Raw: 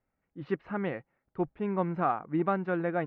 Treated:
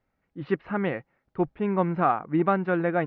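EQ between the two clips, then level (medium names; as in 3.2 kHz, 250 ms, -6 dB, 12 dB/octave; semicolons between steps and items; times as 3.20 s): distance through air 220 m; treble shelf 3.2 kHz +11 dB; +5.5 dB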